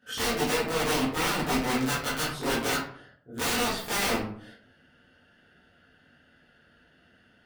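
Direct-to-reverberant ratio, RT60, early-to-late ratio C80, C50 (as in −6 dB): −12.0 dB, 0.60 s, 7.5 dB, 3.5 dB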